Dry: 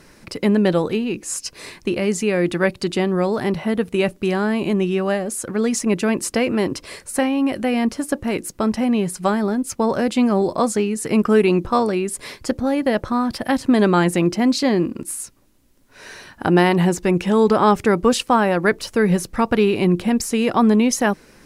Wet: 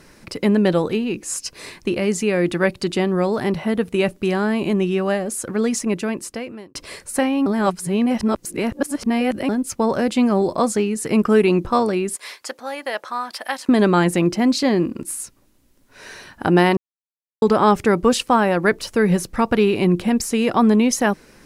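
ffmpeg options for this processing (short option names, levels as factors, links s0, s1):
-filter_complex "[0:a]asettb=1/sr,asplit=3[s0][s1][s2];[s0]atrim=end=12.164[s3];[s1]atrim=start=12.16:end=13.69,asetpts=PTS-STARTPTS,afade=t=in:d=0.004:c=qsin,afade=t=out:st=1.526:d=0.004:c=qsin,highpass=800[s4];[s2]atrim=start=13.686[s5];[s3][s4]acrossfade=d=0.004:c1=hsin:c2=qsin[s6];[s6][s5]acrossfade=d=0.004:c1=qsin:c2=hsin,asplit=6[s7][s8][s9][s10][s11][s12];[s7]atrim=end=6.75,asetpts=PTS-STARTPTS,afade=t=out:st=5.62:d=1.13[s13];[s8]atrim=start=6.75:end=7.462,asetpts=PTS-STARTPTS,afade=t=in:d=0.004:c=hsin[s14];[s9]atrim=start=7.458:end=9.492,asetpts=PTS-STARTPTS,areverse[s15];[s10]atrim=start=9.488:end=16.77,asetpts=PTS-STARTPTS,afade=t=out:st=7.278:d=0.004:c=hsin[s16];[s11]atrim=start=16.77:end=17.42,asetpts=PTS-STARTPTS,volume=0[s17];[s12]atrim=start=17.42,asetpts=PTS-STARTPTS,afade=t=in:d=0.004:c=hsin[s18];[s13][s14]concat=n=2:v=0:a=1[s19];[s19][s15]acrossfade=d=0.004:c1=hsin:c2=hsin[s20];[s16][s17][s18]concat=n=3:v=0:a=1[s21];[s20][s21]acrossfade=d=0.004:c1=hsin:c2=hsin"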